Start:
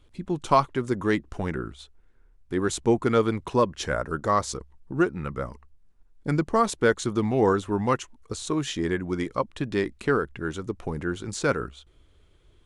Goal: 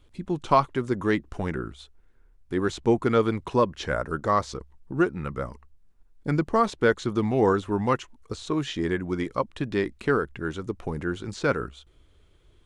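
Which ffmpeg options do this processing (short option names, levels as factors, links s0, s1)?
-filter_complex "[0:a]acrossover=split=5100[s0][s1];[s1]acompressor=threshold=0.00251:ratio=4:attack=1:release=60[s2];[s0][s2]amix=inputs=2:normalize=0"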